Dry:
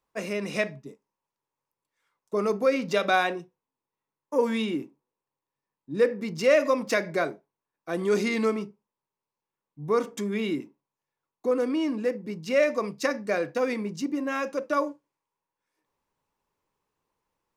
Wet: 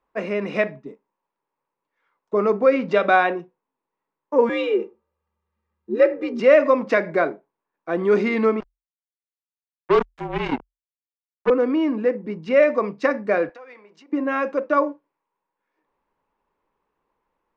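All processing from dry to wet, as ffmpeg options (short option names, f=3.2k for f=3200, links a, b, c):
-filter_complex "[0:a]asettb=1/sr,asplit=3[a][b][c];[a]atrim=end=4.494[d];[b]atrim=start=4.49:end=6.4,asetpts=PTS-STARTPTS,afade=t=in:d=0.004:c=qsin,afade=t=out:st=1.906:d=0.004:c=qsin,asubboost=boost=12:cutoff=160,aecho=1:1:2.6:0.93,atrim=end_sample=84231,afreqshift=77[e];[c]atrim=start=6.396[f];[d][e]acrossfade=d=0.004:c1=hsin:c2=qsin[g];[g][f]acrossfade=d=0.004:c1=qsin:c2=hsin,asettb=1/sr,asplit=3[h][i][j];[h]atrim=end=8.604[k];[i]atrim=start=8.6:end=11.5,asetpts=PTS-STARTPTS,afade=t=in:d=0.004:c=qsin,afade=t=out:st=2.896:d=0.004:c=qsin,acrusher=bits=3:mix=0:aa=0.5,afreqshift=-42[l];[j]atrim=start=11.496[m];[k][l]acrossfade=d=0.004:c1=hsin:c2=qsin[n];[n][m]acrossfade=d=0.004:c1=qsin:c2=hsin,asettb=1/sr,asplit=3[o][p][q];[o]atrim=end=13.494[r];[p]atrim=start=13.49:end=14.13,asetpts=PTS-STARTPTS,afade=t=in:d=0.004:c=qsin,afade=t=out:st=0.636:d=0.004:c=qsin,acompressor=threshold=-39dB:ratio=16:attack=3.2:release=140:knee=1:detection=peak,highpass=660[s];[q]atrim=start=14.126[t];[r][s]acrossfade=d=0.004:c1=hsin:c2=qsin[u];[u][t]acrossfade=d=0.004:c1=qsin:c2=hsin,lowpass=2.1k,equalizer=f=110:w=1.7:g=-13.5,volume=7dB"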